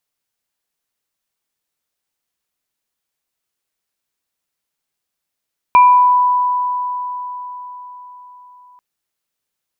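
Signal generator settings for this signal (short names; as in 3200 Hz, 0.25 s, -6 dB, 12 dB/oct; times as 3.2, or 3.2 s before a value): sine partials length 3.04 s, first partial 991 Hz, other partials 2380 Hz, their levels -12.5 dB, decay 4.64 s, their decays 0.55 s, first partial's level -4 dB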